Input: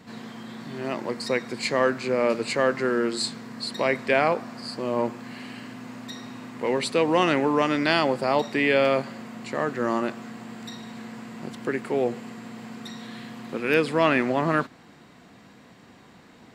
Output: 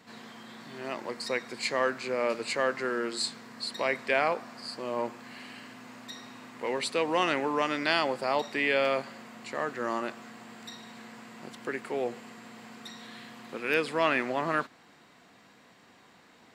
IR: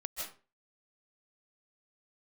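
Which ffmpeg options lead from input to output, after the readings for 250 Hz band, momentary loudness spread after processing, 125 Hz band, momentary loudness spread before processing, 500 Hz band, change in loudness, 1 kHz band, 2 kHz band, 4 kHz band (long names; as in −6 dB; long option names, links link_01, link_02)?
−9.5 dB, 19 LU, −12.0 dB, 18 LU, −6.5 dB, −5.5 dB, −4.5 dB, −3.5 dB, −3.0 dB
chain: -af "lowshelf=frequency=340:gain=-11,volume=-3dB"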